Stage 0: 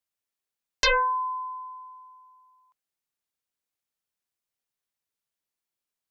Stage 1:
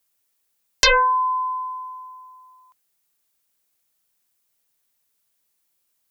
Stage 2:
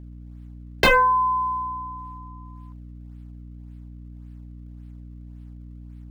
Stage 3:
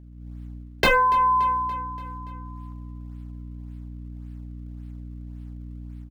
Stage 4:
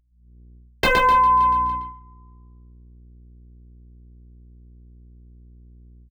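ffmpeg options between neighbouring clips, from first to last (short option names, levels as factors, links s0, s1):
-filter_complex "[0:a]highshelf=f=7500:g=10,asplit=2[s0][s1];[s1]acompressor=threshold=0.0282:ratio=6,volume=1.26[s2];[s0][s2]amix=inputs=2:normalize=0,volume=1.41"
-filter_complex "[0:a]acrossover=split=540|3400[s0][s1][s2];[s2]acrusher=samples=32:mix=1:aa=0.000001:lfo=1:lforange=51.2:lforate=1.8[s3];[s0][s1][s3]amix=inputs=3:normalize=0,aeval=exprs='val(0)+0.0112*(sin(2*PI*60*n/s)+sin(2*PI*2*60*n/s)/2+sin(2*PI*3*60*n/s)/3+sin(2*PI*4*60*n/s)/4+sin(2*PI*5*60*n/s)/5)':c=same"
-af "dynaudnorm=f=140:g=3:m=2.66,aecho=1:1:287|574|861|1148|1435:0.119|0.0689|0.04|0.0232|0.0134,volume=0.562"
-af "agate=range=0.282:threshold=0.0398:ratio=16:detection=peak,aecho=1:1:116.6|253.6:0.631|0.251,anlmdn=2.51"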